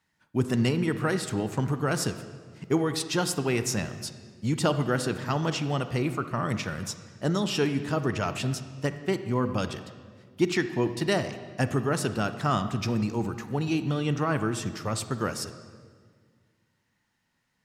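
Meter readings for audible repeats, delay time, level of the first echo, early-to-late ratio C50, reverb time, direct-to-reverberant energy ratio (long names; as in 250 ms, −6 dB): no echo audible, no echo audible, no echo audible, 11.0 dB, 1.7 s, 10.0 dB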